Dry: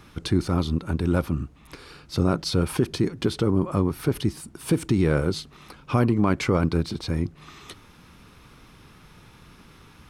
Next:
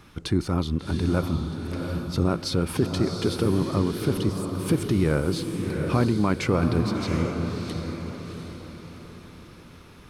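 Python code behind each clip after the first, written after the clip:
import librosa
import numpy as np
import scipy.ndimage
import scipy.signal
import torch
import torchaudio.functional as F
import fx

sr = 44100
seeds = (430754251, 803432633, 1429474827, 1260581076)

y = fx.echo_diffused(x, sr, ms=728, feedback_pct=42, wet_db=-5.0)
y = y * librosa.db_to_amplitude(-1.5)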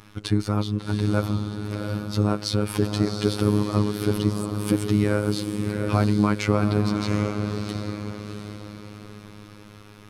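y = fx.robotise(x, sr, hz=104.0)
y = y * librosa.db_to_amplitude(3.5)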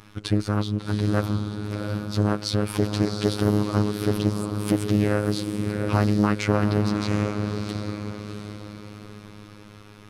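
y = fx.doppler_dist(x, sr, depth_ms=0.38)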